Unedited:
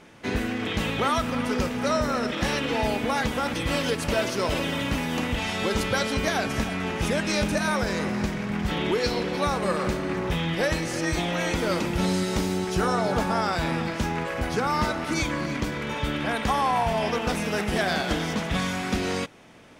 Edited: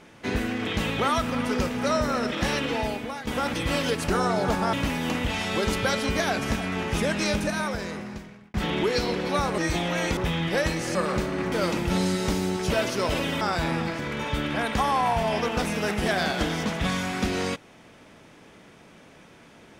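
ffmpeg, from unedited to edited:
ffmpeg -i in.wav -filter_complex "[0:a]asplit=12[link_01][link_02][link_03][link_04][link_05][link_06][link_07][link_08][link_09][link_10][link_11][link_12];[link_01]atrim=end=3.27,asetpts=PTS-STARTPTS,afade=type=out:start_time=2.62:duration=0.65:silence=0.188365[link_13];[link_02]atrim=start=3.27:end=4.102,asetpts=PTS-STARTPTS,afade=type=in:duration=0.004:curve=hsin:silence=0.188365[link_14];[link_03]atrim=start=12.778:end=13.412[link_15];[link_04]atrim=start=4.808:end=8.62,asetpts=PTS-STARTPTS,afade=type=out:start_time=2.482:duration=1.33[link_16];[link_05]atrim=start=8.62:end=9.662,asetpts=PTS-STARTPTS,afade=type=in:duration=0.004:curve=hsin[link_17];[link_06]atrim=start=11.008:end=11.602[link_18];[link_07]atrim=start=10.228:end=11.012[link_19];[link_08]atrim=start=9.658:end=10.232[link_20];[link_09]atrim=start=11.598:end=12.782[link_21];[link_10]atrim=start=4.098:end=4.812[link_22];[link_11]atrim=start=13.408:end=13.992[link_23];[link_12]atrim=start=15.688[link_24];[link_13][link_14]concat=n=2:v=0:a=1[link_25];[link_25][link_15]acrossfade=duration=0.004:curve1=hsin:curve2=hsin[link_26];[link_16][link_17]concat=n=2:v=0:a=1[link_27];[link_26][link_27]acrossfade=duration=0.004:curve1=hsin:curve2=hsin[link_28];[link_28][link_18]acrossfade=duration=0.004:curve1=hsin:curve2=hsin[link_29];[link_29][link_19]acrossfade=duration=0.004:curve1=hsin:curve2=hsin[link_30];[link_30][link_20]acrossfade=duration=0.004:curve1=hsin:curve2=hsin[link_31];[link_31][link_21]acrossfade=duration=0.004:curve1=hsin:curve2=hsin[link_32];[link_32][link_22]acrossfade=duration=0.004:curve1=hsin:curve2=hsin[link_33];[link_33][link_23]acrossfade=duration=0.004:curve1=hsin:curve2=hsin[link_34];[link_34][link_24]acrossfade=duration=0.004:curve1=hsin:curve2=hsin" out.wav

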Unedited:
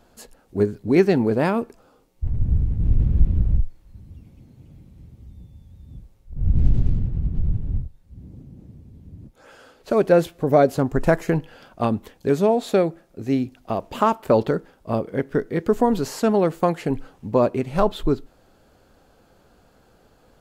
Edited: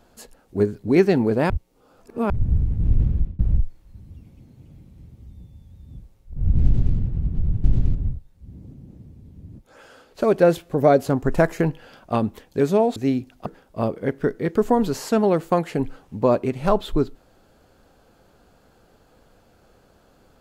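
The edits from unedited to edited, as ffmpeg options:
ffmpeg -i in.wav -filter_complex "[0:a]asplit=8[link_01][link_02][link_03][link_04][link_05][link_06][link_07][link_08];[link_01]atrim=end=1.502[link_09];[link_02]atrim=start=1.498:end=2.302,asetpts=PTS-STARTPTS,areverse[link_10];[link_03]atrim=start=2.298:end=3.39,asetpts=PTS-STARTPTS,afade=type=out:start_time=0.752:duration=0.34[link_11];[link_04]atrim=start=3.39:end=7.642,asetpts=PTS-STARTPTS,afade=type=in:duration=0.004:curve=hsin[link_12];[link_05]atrim=start=6.648:end=6.962[link_13];[link_06]atrim=start=7.638:end=12.652[link_14];[link_07]atrim=start=13.208:end=13.712[link_15];[link_08]atrim=start=14.568[link_16];[link_09][link_10]acrossfade=duration=0.004:curve1=hsin:curve2=hsin[link_17];[link_11][link_12]concat=n=2:v=0:a=1[link_18];[link_17][link_18]acrossfade=duration=0.004:curve1=hsin:curve2=hsin[link_19];[link_19][link_13]acrossfade=duration=0.004:curve1=hsin:curve2=hsin[link_20];[link_20][link_14]acrossfade=duration=0.004:curve1=hsin:curve2=hsin[link_21];[link_21][link_15]acrossfade=duration=0.004:curve1=hsin:curve2=hsin[link_22];[link_22][link_16]acrossfade=duration=0.004:curve1=hsin:curve2=hsin" out.wav

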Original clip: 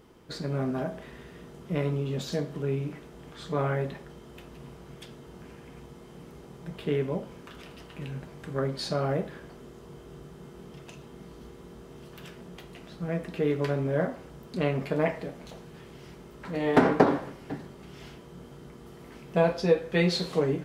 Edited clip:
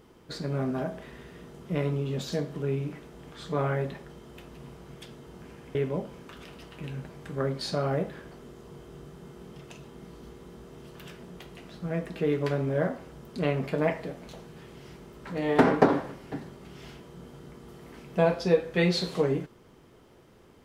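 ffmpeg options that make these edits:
ffmpeg -i in.wav -filter_complex "[0:a]asplit=2[link_01][link_02];[link_01]atrim=end=5.752[link_03];[link_02]atrim=start=6.928[link_04];[link_03][link_04]acrossfade=duration=0.004:curve1=hsin:curve2=hsin" out.wav

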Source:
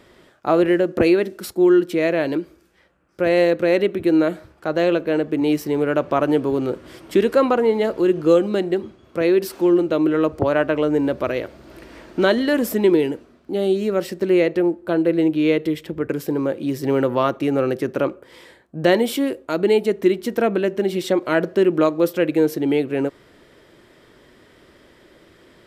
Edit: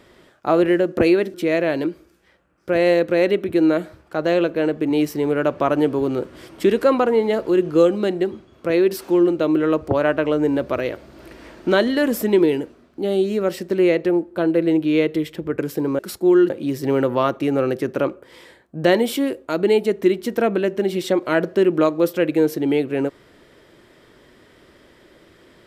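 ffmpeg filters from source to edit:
ffmpeg -i in.wav -filter_complex "[0:a]asplit=4[link_01][link_02][link_03][link_04];[link_01]atrim=end=1.342[link_05];[link_02]atrim=start=1.848:end=16.502[link_06];[link_03]atrim=start=1.338:end=1.852[link_07];[link_04]atrim=start=16.498[link_08];[link_05][link_06]acrossfade=duration=0.004:curve1=hsin:curve2=hsin[link_09];[link_09][link_07]acrossfade=duration=0.004:curve1=hsin:curve2=hsin[link_10];[link_10][link_08]acrossfade=duration=0.004:curve1=hsin:curve2=hsin" out.wav

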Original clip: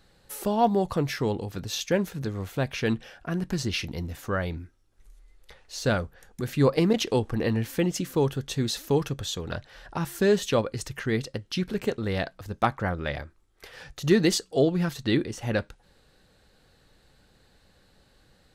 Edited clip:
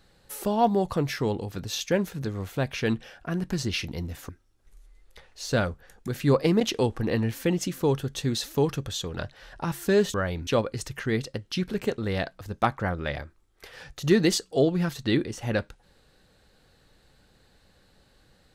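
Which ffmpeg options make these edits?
ffmpeg -i in.wav -filter_complex "[0:a]asplit=4[link_01][link_02][link_03][link_04];[link_01]atrim=end=4.292[link_05];[link_02]atrim=start=4.618:end=10.472[link_06];[link_03]atrim=start=4.288:end=4.622[link_07];[link_04]atrim=start=10.468[link_08];[link_05][link_06]acrossfade=duration=0.004:curve1=hsin:curve2=hsin[link_09];[link_09][link_07]acrossfade=duration=0.004:curve1=hsin:curve2=hsin[link_10];[link_10][link_08]acrossfade=duration=0.004:curve1=hsin:curve2=hsin" out.wav

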